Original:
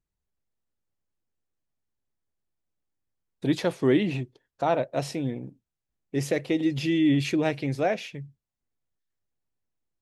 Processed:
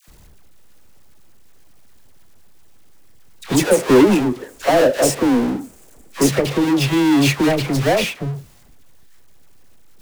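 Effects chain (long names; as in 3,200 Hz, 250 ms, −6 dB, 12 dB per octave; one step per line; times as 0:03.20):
0:03.55–0:06.23: octave-band graphic EQ 125/250/500/4,000/8,000 Hz −9/+8/+9/−10/+10 dB
power curve on the samples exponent 0.35
bit-depth reduction 8 bits, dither none
all-pass dispersion lows, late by 82 ms, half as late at 890 Hz
expander for the loud parts 1.5 to 1, over −28 dBFS
level −1 dB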